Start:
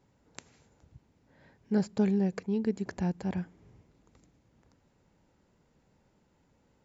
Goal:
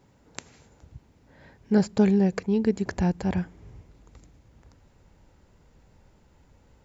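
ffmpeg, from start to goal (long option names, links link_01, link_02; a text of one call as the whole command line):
ffmpeg -i in.wav -af "asubboost=boost=3.5:cutoff=94,volume=8dB" out.wav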